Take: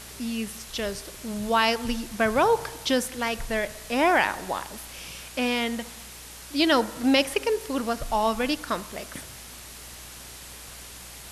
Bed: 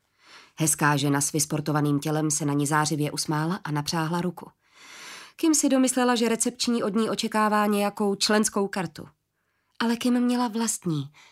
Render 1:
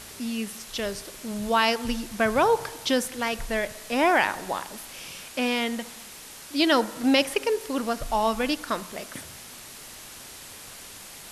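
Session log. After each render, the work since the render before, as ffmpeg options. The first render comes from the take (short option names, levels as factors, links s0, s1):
-af "bandreject=f=60:t=h:w=4,bandreject=f=120:t=h:w=4,bandreject=f=180:t=h:w=4"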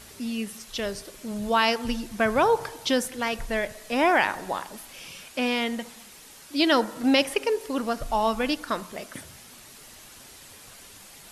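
-af "afftdn=nr=6:nf=-44"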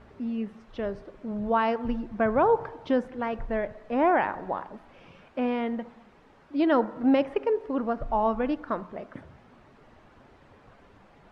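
-af "lowpass=1200"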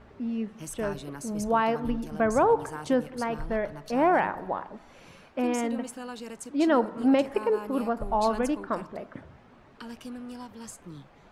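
-filter_complex "[1:a]volume=0.141[s0];[0:a][s0]amix=inputs=2:normalize=0"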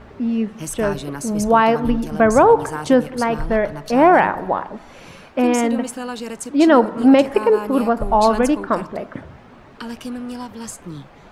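-af "volume=3.35,alimiter=limit=0.708:level=0:latency=1"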